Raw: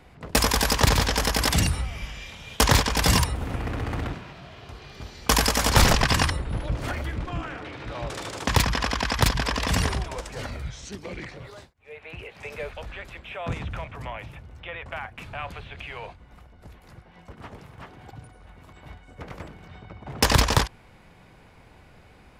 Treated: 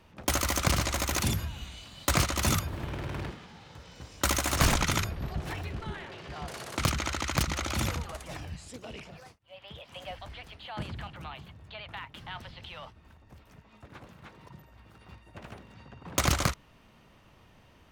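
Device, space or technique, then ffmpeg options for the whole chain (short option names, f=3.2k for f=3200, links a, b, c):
nightcore: -af "asetrate=55125,aresample=44100,volume=-6.5dB"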